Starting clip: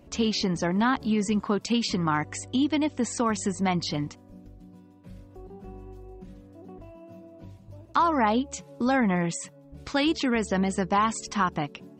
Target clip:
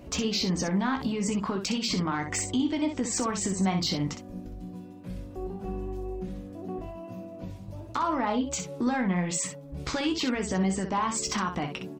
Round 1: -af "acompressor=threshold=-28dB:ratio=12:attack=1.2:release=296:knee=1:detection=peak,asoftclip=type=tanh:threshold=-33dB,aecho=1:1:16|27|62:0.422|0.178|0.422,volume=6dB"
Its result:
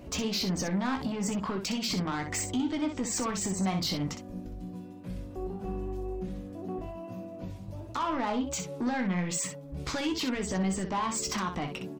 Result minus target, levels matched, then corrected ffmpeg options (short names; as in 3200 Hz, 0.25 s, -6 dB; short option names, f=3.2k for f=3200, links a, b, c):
soft clip: distortion +12 dB
-af "acompressor=threshold=-28dB:ratio=12:attack=1.2:release=296:knee=1:detection=peak,asoftclip=type=tanh:threshold=-24.5dB,aecho=1:1:16|27|62:0.422|0.178|0.422,volume=6dB"